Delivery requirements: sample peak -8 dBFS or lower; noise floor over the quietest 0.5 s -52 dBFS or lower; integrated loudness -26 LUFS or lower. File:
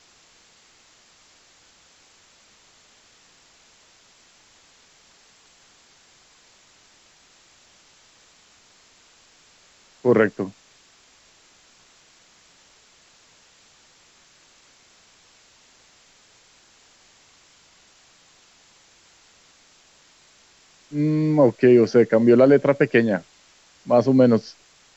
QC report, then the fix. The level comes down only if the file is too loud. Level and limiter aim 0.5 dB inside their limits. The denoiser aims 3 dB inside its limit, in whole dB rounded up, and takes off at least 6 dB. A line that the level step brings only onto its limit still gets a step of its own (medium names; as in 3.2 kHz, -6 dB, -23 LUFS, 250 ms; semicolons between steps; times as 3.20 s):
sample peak -5.5 dBFS: fail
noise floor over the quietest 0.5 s -56 dBFS: pass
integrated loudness -18.5 LUFS: fail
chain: trim -8 dB